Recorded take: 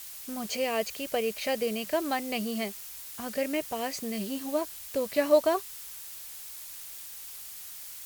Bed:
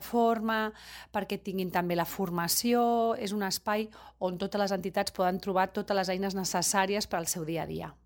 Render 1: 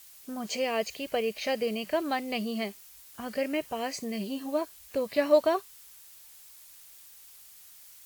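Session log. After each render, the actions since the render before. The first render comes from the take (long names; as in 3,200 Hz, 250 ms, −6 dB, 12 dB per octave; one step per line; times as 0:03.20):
noise reduction from a noise print 9 dB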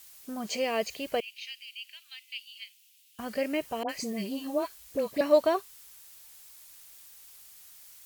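0:01.20–0:03.19: four-pole ladder high-pass 2,500 Hz, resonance 60%
0:03.83–0:05.21: all-pass dispersion highs, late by 60 ms, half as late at 1,100 Hz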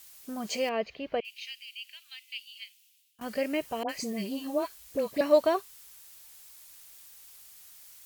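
0:00.69–0:01.25: high-frequency loss of the air 300 metres
0:02.56–0:03.21: fade out equal-power, to −17.5 dB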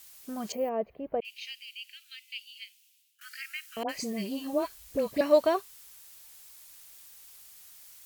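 0:00.52–0:01.22: drawn EQ curve 810 Hz 0 dB, 4,900 Hz −28 dB, 7,800 Hz −21 dB, 14,000 Hz +1 dB
0:01.73–0:03.77: Chebyshev high-pass filter 1,300 Hz, order 8
0:04.53–0:05.21: low-shelf EQ 140 Hz +8.5 dB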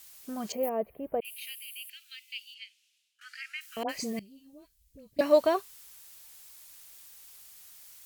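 0:00.63–0:01.90: high shelf with overshoot 8,000 Hz +13.5 dB, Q 3
0:02.54–0:03.61: high-frequency loss of the air 64 metres
0:04.19–0:05.19: guitar amp tone stack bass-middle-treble 10-0-1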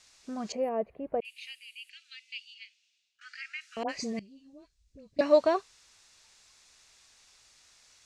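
low-pass filter 6,800 Hz 24 dB per octave
notch filter 3,100 Hz, Q 14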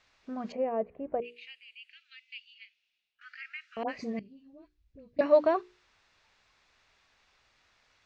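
low-pass filter 2,500 Hz 12 dB per octave
mains-hum notches 60/120/180/240/300/360/420/480 Hz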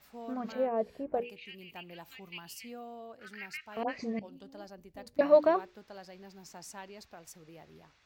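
mix in bed −19.5 dB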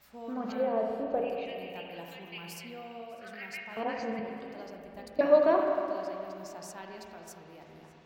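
feedback echo with a high-pass in the loop 601 ms, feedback 46%, level −22 dB
spring reverb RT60 2.6 s, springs 32/41/47 ms, chirp 55 ms, DRR 0.5 dB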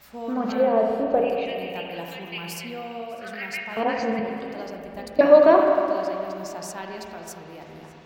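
level +9.5 dB
brickwall limiter −3 dBFS, peak gain reduction 2 dB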